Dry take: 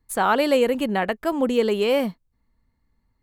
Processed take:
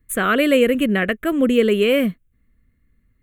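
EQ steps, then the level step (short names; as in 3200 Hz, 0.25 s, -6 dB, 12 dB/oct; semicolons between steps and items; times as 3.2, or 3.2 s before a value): fixed phaser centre 2100 Hz, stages 4; +7.5 dB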